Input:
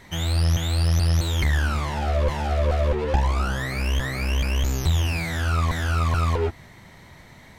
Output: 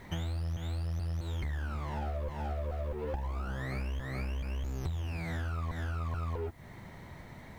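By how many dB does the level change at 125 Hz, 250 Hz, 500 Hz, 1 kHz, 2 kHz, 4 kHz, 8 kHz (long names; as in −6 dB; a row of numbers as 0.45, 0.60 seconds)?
−12.5, −11.5, −13.0, −13.5, −15.0, −19.0, −21.5 decibels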